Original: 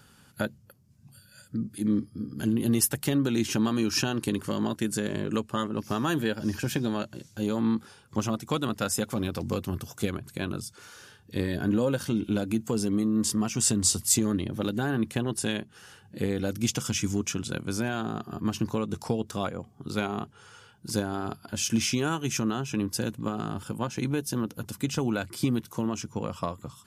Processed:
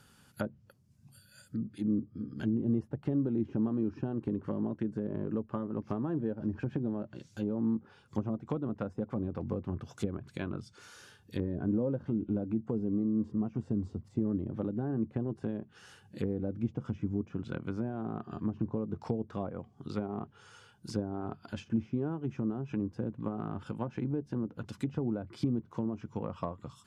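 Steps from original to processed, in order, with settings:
treble cut that deepens with the level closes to 580 Hz, closed at −24.5 dBFS
level −4.5 dB

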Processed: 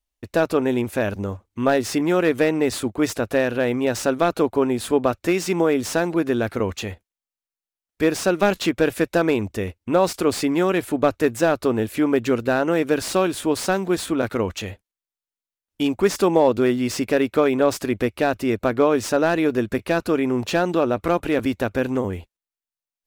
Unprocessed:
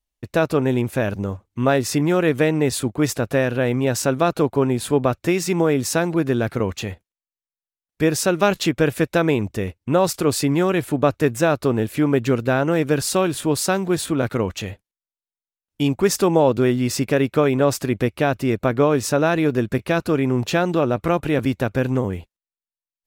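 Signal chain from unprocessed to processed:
parametric band 140 Hz −15 dB 0.38 octaves
slew-rate limiting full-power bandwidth 280 Hz

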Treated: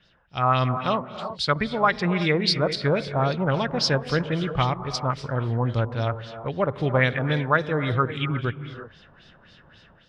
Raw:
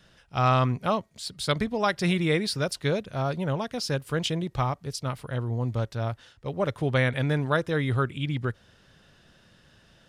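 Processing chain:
0:03.42–0:04.24: mu-law and A-law mismatch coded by mu
reverb whose tail is shaped and stops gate 390 ms rising, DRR 10 dB
auto-filter low-pass sine 3.7 Hz 970–4,900 Hz
automatic gain control gain up to 8.5 dB
level −5 dB

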